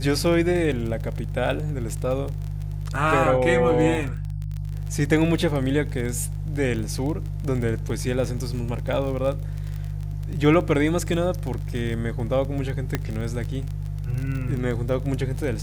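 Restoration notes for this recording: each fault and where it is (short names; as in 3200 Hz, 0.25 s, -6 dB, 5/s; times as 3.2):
crackle 27/s -28 dBFS
hum 50 Hz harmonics 3 -29 dBFS
12.95 pop -9 dBFS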